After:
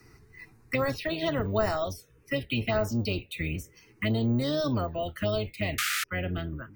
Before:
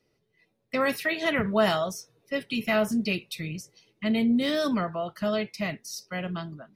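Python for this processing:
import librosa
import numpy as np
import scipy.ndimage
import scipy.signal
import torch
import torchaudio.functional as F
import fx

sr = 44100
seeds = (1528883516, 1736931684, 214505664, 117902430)

y = fx.octave_divider(x, sr, octaves=1, level_db=-2.0)
y = fx.peak_eq(y, sr, hz=190.0, db=-8.0, octaves=0.71)
y = fx.env_phaser(y, sr, low_hz=570.0, high_hz=3300.0, full_db=-20.0)
y = fx.spec_paint(y, sr, seeds[0], shape='noise', start_s=5.78, length_s=0.26, low_hz=1200.0, high_hz=12000.0, level_db=-24.0)
y = np.repeat(scipy.signal.resample_poly(y, 1, 2), 2)[:len(y)]
y = fx.band_squash(y, sr, depth_pct=70)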